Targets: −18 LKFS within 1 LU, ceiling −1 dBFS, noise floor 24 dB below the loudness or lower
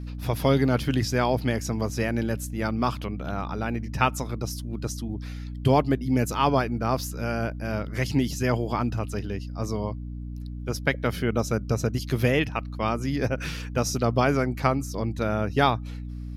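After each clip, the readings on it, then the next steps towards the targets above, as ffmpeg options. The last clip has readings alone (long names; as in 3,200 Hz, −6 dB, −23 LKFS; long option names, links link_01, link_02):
mains hum 60 Hz; hum harmonics up to 300 Hz; level of the hum −32 dBFS; integrated loudness −26.5 LKFS; sample peak −6.0 dBFS; target loudness −18.0 LKFS
→ -af "bandreject=frequency=60:width_type=h:width=6,bandreject=frequency=120:width_type=h:width=6,bandreject=frequency=180:width_type=h:width=6,bandreject=frequency=240:width_type=h:width=6,bandreject=frequency=300:width_type=h:width=6"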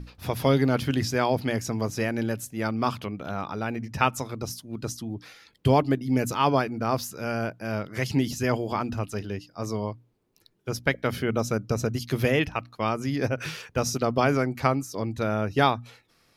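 mains hum none found; integrated loudness −27.0 LKFS; sample peak −6.0 dBFS; target loudness −18.0 LKFS
→ -af "volume=9dB,alimiter=limit=-1dB:level=0:latency=1"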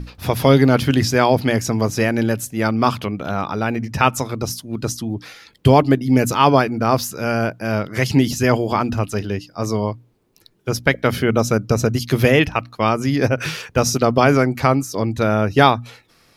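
integrated loudness −18.5 LKFS; sample peak −1.0 dBFS; background noise floor −55 dBFS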